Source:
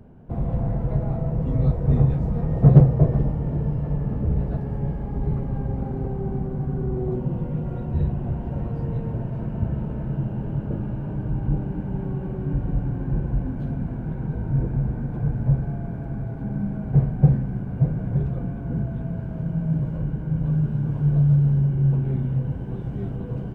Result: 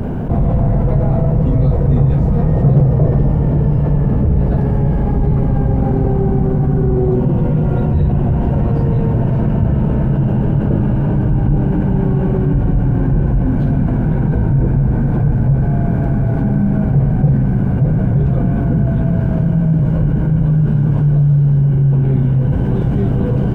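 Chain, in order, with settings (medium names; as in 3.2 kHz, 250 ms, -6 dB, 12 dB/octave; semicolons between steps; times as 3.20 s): level flattener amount 70%; trim -1.5 dB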